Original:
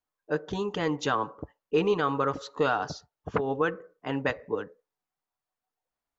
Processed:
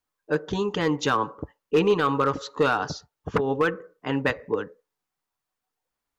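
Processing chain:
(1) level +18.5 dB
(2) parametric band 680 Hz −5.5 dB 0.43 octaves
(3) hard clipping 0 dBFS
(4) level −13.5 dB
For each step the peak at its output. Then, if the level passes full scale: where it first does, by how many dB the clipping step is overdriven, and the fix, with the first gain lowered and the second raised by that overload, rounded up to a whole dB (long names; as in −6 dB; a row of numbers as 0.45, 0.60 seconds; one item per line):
+5.5, +4.5, 0.0, −13.5 dBFS
step 1, 4.5 dB
step 1 +13.5 dB, step 4 −8.5 dB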